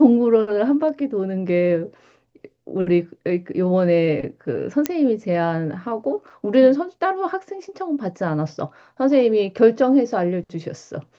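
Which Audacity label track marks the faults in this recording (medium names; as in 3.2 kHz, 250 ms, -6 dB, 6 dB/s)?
4.860000	4.860000	pop -5 dBFS
6.300000	6.300000	dropout 3.2 ms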